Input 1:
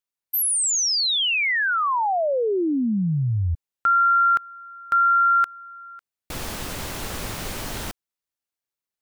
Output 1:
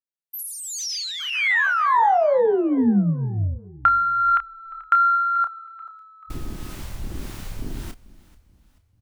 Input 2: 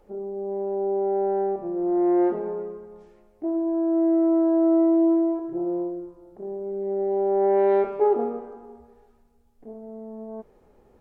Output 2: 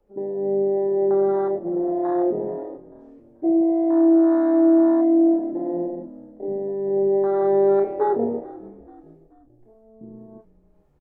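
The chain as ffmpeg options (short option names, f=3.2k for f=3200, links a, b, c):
-filter_complex "[0:a]afwtdn=0.0631,asubboost=boost=4:cutoff=93,acrossover=split=170|1800[a][b][c];[a]acompressor=threshold=-38dB:ratio=4[d];[b]acompressor=threshold=-22dB:ratio=4[e];[c]acompressor=threshold=-38dB:ratio=4[f];[d][e][f]amix=inputs=3:normalize=0,acrossover=split=600[g][h];[g]aeval=exprs='val(0)*(1-0.5/2+0.5/2*cos(2*PI*1.7*n/s))':c=same[i];[h]aeval=exprs='val(0)*(1-0.5/2-0.5/2*cos(2*PI*1.7*n/s))':c=same[j];[i][j]amix=inputs=2:normalize=0,asplit=2[k][l];[l]adelay=30,volume=-9dB[m];[k][m]amix=inputs=2:normalize=0,asplit=2[n][o];[o]asplit=3[p][q][r];[p]adelay=435,afreqshift=-38,volume=-20dB[s];[q]adelay=870,afreqshift=-76,volume=-26.9dB[t];[r]adelay=1305,afreqshift=-114,volume=-33.9dB[u];[s][t][u]amix=inputs=3:normalize=0[v];[n][v]amix=inputs=2:normalize=0,volume=8dB"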